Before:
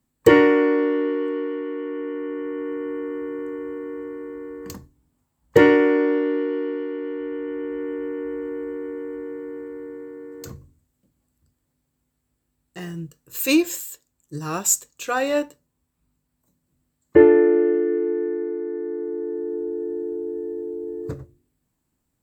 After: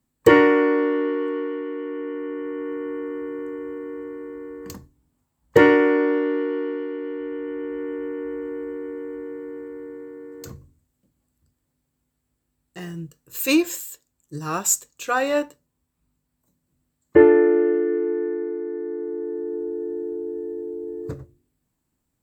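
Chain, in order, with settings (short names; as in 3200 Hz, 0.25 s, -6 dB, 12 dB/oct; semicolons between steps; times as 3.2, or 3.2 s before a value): dynamic EQ 1200 Hz, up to +4 dB, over -35 dBFS, Q 1; gain -1 dB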